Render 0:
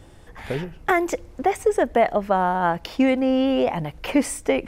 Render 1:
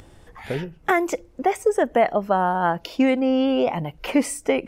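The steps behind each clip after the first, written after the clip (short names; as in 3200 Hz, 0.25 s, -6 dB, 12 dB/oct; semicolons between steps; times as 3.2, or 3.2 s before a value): spectral noise reduction 10 dB; upward compressor, threshold -38 dBFS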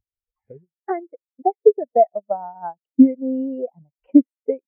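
high shelf 4500 Hz -6 dB; transient shaper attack +5 dB, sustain -9 dB; spectral expander 2.5:1; gain +1.5 dB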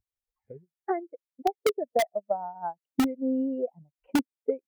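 in parallel at -4.5 dB: wrapped overs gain 7 dB; on the sum: compressor 6:1, threshold -14 dBFS, peak gain reduction 8.5 dB; gain -7 dB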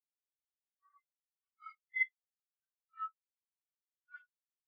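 phase scrambler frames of 0.2 s; brick-wall FIR high-pass 1100 Hz; spectral expander 4:1; gain +2.5 dB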